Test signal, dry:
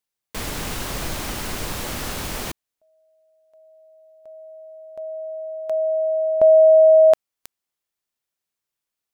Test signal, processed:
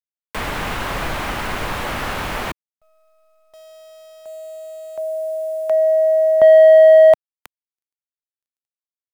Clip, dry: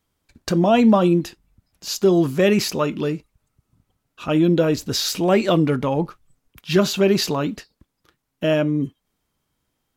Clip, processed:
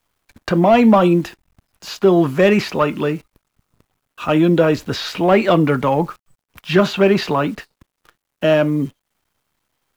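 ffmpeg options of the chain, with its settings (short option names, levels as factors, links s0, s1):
-filter_complex "[0:a]acrossover=split=180|520|4000[s0][s1][s2][s3];[s2]asplit=2[s4][s5];[s5]highpass=f=720:p=1,volume=5.62,asoftclip=type=tanh:threshold=0.422[s6];[s4][s6]amix=inputs=2:normalize=0,lowpass=f=1600:p=1,volume=0.501[s7];[s3]acompressor=threshold=0.0126:ratio=6:attack=3.7:release=562:detection=rms[s8];[s0][s1][s7][s8]amix=inputs=4:normalize=0,acrusher=bits=9:dc=4:mix=0:aa=0.000001,volume=1.33"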